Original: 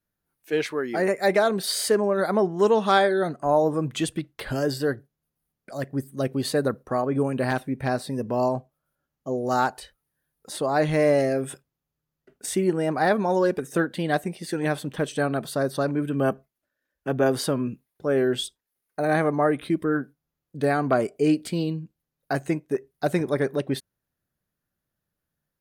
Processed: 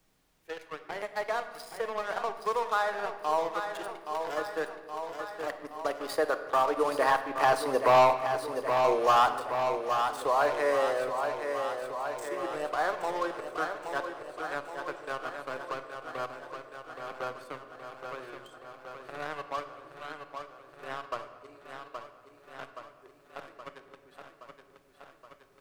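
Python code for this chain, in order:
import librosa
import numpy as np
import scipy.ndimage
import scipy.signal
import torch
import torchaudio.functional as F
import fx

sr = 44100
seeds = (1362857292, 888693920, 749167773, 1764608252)

p1 = fx.doppler_pass(x, sr, speed_mps=19, closest_m=8.9, pass_at_s=8.13)
p2 = scipy.signal.sosfilt(scipy.signal.butter(4, 390.0, 'highpass', fs=sr, output='sos'), p1)
p3 = fx.peak_eq(p2, sr, hz=1100.0, db=13.0, octaves=0.77)
p4 = fx.leveller(p3, sr, passes=3)
p5 = fx.dmg_noise_colour(p4, sr, seeds[0], colour='pink', level_db=-80.0)
p6 = p5 + fx.echo_feedback(p5, sr, ms=822, feedback_pct=57, wet_db=-9, dry=0)
p7 = fx.room_shoebox(p6, sr, seeds[1], volume_m3=880.0, walls='mixed', distance_m=0.55)
p8 = fx.band_squash(p7, sr, depth_pct=40)
y = F.gain(torch.from_numpy(p8), -3.0).numpy()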